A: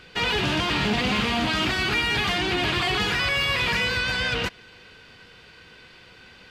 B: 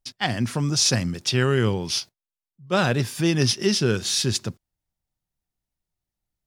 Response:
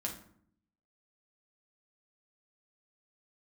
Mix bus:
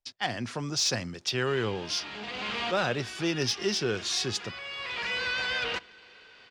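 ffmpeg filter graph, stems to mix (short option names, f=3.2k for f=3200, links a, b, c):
-filter_complex "[0:a]adelay=1300,volume=-4.5dB,asplit=2[a][b];[b]volume=-19.5dB[c];[1:a]lowshelf=f=200:g=7,volume=-4dB,asplit=2[d][e];[e]apad=whole_len=344200[f];[a][f]sidechaincompress=threshold=-39dB:ratio=8:attack=16:release=656[g];[2:a]atrim=start_sample=2205[h];[c][h]afir=irnorm=-1:irlink=0[i];[g][d][i]amix=inputs=3:normalize=0,acrossover=split=340 7500:gain=0.2 1 0.0708[j][k][l];[j][k][l]amix=inputs=3:normalize=0,asoftclip=type=tanh:threshold=-16.5dB"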